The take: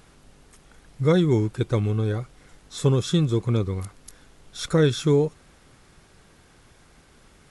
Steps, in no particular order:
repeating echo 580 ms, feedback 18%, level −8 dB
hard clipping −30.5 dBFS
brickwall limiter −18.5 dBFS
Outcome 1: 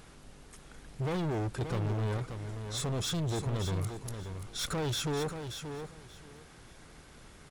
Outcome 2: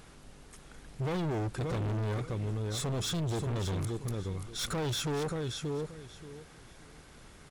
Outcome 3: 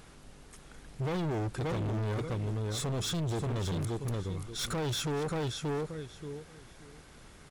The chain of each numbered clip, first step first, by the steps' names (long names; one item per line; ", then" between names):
brickwall limiter, then hard clipping, then repeating echo
brickwall limiter, then repeating echo, then hard clipping
repeating echo, then brickwall limiter, then hard clipping